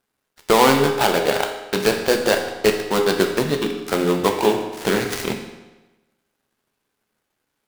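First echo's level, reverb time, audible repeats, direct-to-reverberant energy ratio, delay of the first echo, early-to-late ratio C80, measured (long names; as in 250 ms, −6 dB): no echo audible, 1.1 s, no echo audible, 3.0 dB, no echo audible, 8.0 dB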